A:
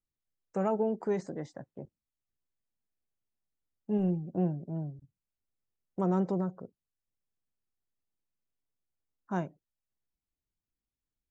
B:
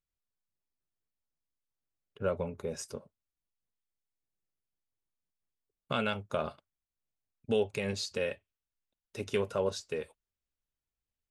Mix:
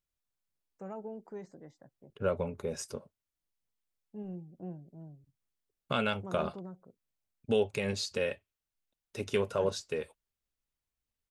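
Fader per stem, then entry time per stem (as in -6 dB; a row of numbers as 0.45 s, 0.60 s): -13.0 dB, +1.0 dB; 0.25 s, 0.00 s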